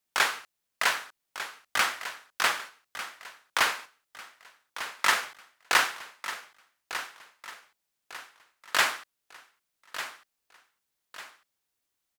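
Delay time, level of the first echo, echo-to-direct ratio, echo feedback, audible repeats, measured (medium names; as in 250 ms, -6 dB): 1198 ms, -12.0 dB, -11.5 dB, 38%, 3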